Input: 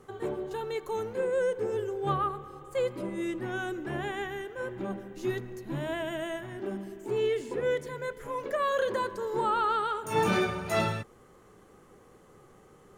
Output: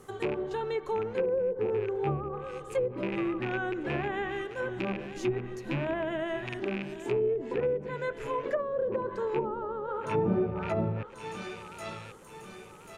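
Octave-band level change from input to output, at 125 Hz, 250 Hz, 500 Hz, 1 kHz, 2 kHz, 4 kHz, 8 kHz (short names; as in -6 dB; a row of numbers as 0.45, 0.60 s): +2.5 dB, +2.0 dB, +1.0 dB, -4.5 dB, -1.5 dB, -5.0 dB, n/a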